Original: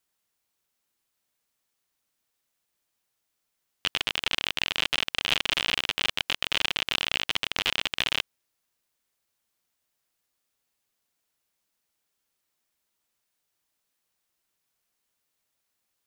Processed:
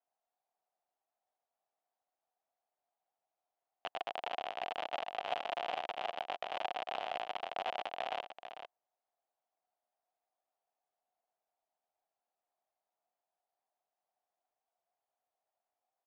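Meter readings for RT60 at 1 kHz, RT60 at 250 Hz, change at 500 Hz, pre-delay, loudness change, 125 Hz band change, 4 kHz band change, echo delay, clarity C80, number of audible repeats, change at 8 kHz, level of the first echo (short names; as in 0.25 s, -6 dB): none, none, +1.0 dB, none, -13.0 dB, under -20 dB, -20.5 dB, 0.447 s, none, 1, under -25 dB, -9.5 dB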